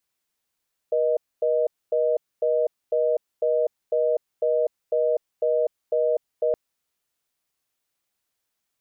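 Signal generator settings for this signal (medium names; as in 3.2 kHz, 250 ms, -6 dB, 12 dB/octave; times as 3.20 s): call progress tone reorder tone, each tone -21.5 dBFS 5.62 s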